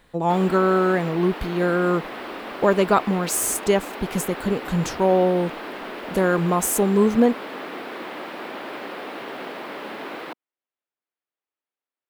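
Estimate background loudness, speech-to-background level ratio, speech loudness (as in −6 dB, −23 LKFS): −33.5 LKFS, 12.0 dB, −21.5 LKFS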